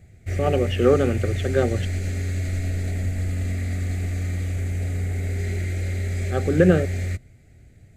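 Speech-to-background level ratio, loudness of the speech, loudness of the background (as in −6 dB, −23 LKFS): 5.0 dB, −22.0 LKFS, −27.0 LKFS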